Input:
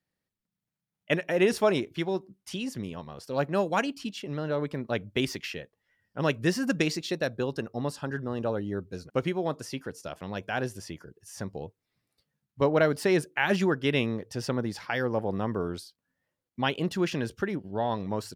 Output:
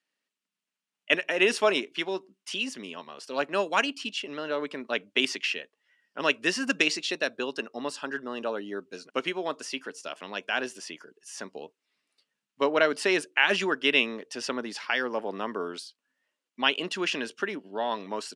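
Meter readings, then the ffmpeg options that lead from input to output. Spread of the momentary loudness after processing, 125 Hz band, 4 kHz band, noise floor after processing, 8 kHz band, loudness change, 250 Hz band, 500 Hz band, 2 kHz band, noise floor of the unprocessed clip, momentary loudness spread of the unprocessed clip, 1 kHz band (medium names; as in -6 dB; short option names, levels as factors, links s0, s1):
16 LU, -17.0 dB, +7.5 dB, under -85 dBFS, +3.5 dB, +1.5 dB, -4.5 dB, -1.5 dB, +5.5 dB, under -85 dBFS, 14 LU, +1.0 dB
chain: -af "highpass=f=290:w=0.5412,highpass=f=290:w=1.3066,equalizer=f=340:t=q:w=4:g=-7,equalizer=f=510:t=q:w=4:g=-7,equalizer=f=770:t=q:w=4:g=-6,equalizer=f=2800:t=q:w=4:g=7,lowpass=f=9400:w=0.5412,lowpass=f=9400:w=1.3066,volume=1.58"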